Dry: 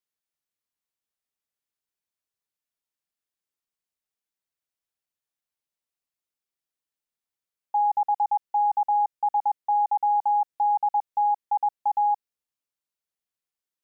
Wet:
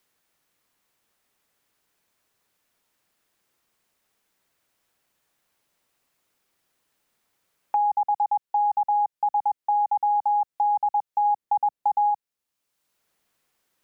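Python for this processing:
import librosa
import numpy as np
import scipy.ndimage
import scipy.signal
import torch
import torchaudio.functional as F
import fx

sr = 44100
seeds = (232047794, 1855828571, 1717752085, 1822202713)

y = fx.low_shelf(x, sr, hz=500.0, db=8.0, at=(11.24, 12.09), fade=0.02)
y = fx.band_squash(y, sr, depth_pct=70)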